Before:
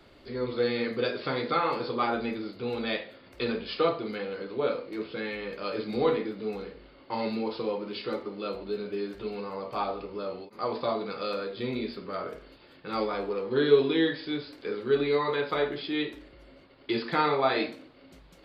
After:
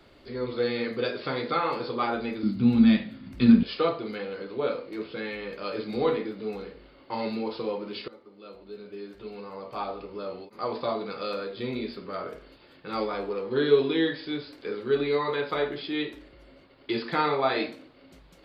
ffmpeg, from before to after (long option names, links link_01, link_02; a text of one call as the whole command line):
ffmpeg -i in.wav -filter_complex "[0:a]asettb=1/sr,asplit=3[link_01][link_02][link_03];[link_01]atrim=end=2.434[link_04];[link_02]atrim=start=2.43:end=3.63,asetpts=PTS-STARTPTS,afade=type=in:duration=0.004:curve=qsin,afade=type=out:start_time=1.196:duration=0.004:curve=qsin,lowshelf=frequency=320:width_type=q:width=3:gain=12[link_05];[link_03]atrim=start=3.626[link_06];[link_04][link_05]acrossfade=duration=0.004:curve1=hsin:curve2=qsin[link_07];[link_07][link_06]acrossfade=duration=0.004:curve1=qsin:curve2=hsin,asplit=2[link_08][link_09];[link_08]atrim=end=8.08,asetpts=PTS-STARTPTS,afade=type=out:start_time=8.076:duration=0.004:curve=hsin:silence=0.105925[link_10];[link_09]atrim=start=8.08,asetpts=PTS-STARTPTS,afade=type=in:duration=2.37:silence=0.105925[link_11];[link_10][link_11]concat=n=2:v=0:a=1" out.wav